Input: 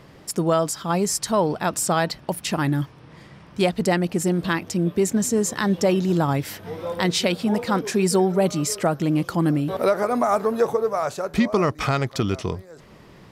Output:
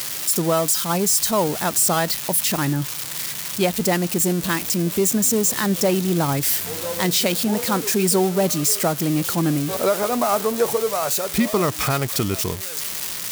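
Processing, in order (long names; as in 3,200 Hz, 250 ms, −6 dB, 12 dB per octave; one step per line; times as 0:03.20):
spike at every zero crossing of −15 dBFS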